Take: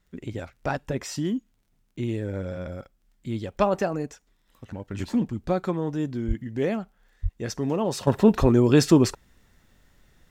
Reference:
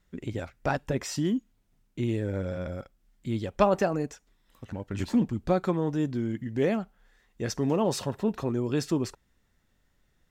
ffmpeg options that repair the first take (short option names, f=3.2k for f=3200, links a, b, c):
-filter_complex "[0:a]adeclick=t=4,asplit=3[a][b][c];[a]afade=t=out:st=6.27:d=0.02[d];[b]highpass=f=140:w=0.5412,highpass=f=140:w=1.3066,afade=t=in:st=6.27:d=0.02,afade=t=out:st=6.39:d=0.02[e];[c]afade=t=in:st=6.39:d=0.02[f];[d][e][f]amix=inputs=3:normalize=0,asplit=3[g][h][i];[g]afade=t=out:st=7.22:d=0.02[j];[h]highpass=f=140:w=0.5412,highpass=f=140:w=1.3066,afade=t=in:st=7.22:d=0.02,afade=t=out:st=7.34:d=0.02[k];[i]afade=t=in:st=7.34:d=0.02[l];[j][k][l]amix=inputs=3:normalize=0,asplit=3[m][n][o];[m]afade=t=out:st=8.4:d=0.02[p];[n]highpass=f=140:w=0.5412,highpass=f=140:w=1.3066,afade=t=in:st=8.4:d=0.02,afade=t=out:st=8.52:d=0.02[q];[o]afade=t=in:st=8.52:d=0.02[r];[p][q][r]amix=inputs=3:normalize=0,asetnsamples=n=441:p=0,asendcmd='8.07 volume volume -10.5dB',volume=0dB"